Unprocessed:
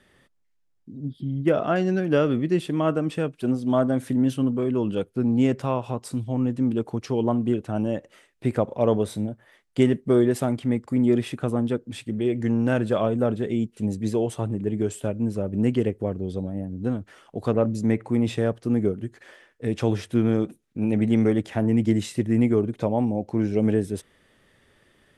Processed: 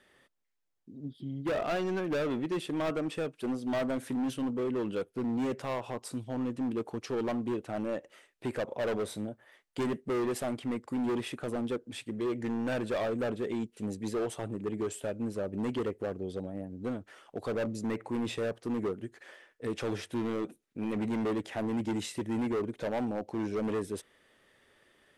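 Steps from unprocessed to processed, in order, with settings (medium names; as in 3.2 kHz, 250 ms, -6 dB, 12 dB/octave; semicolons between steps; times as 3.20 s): tone controls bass -10 dB, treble -1 dB; hard clipper -25 dBFS, distortion -8 dB; trim -3 dB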